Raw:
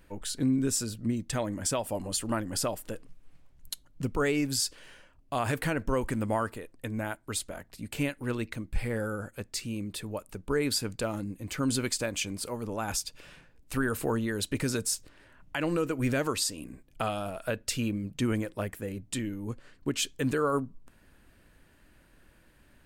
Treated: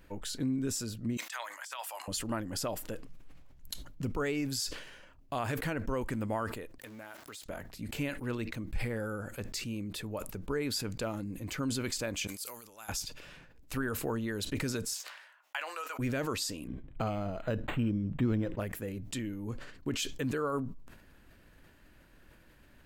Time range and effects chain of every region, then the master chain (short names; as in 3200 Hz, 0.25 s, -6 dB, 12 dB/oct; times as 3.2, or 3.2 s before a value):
1.17–2.08 HPF 970 Hz 24 dB/oct + negative-ratio compressor -39 dBFS, ratio -0.5
6.78–7.46 zero-crossing step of -42 dBFS + HPF 550 Hz 6 dB/oct + compressor 4:1, threshold -45 dBFS
12.27–12.89 pre-emphasis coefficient 0.97 + de-esser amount 35%
14.94–15.99 HPF 760 Hz 24 dB/oct + gate -54 dBFS, range -22 dB + doubler 14 ms -12 dB
16.67–18.6 low shelf 390 Hz +8.5 dB + decimation joined by straight lines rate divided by 8×
whole clip: compressor 1.5:1, threshold -39 dBFS; bell 9000 Hz -7.5 dB 0.26 oct; sustainer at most 64 dB/s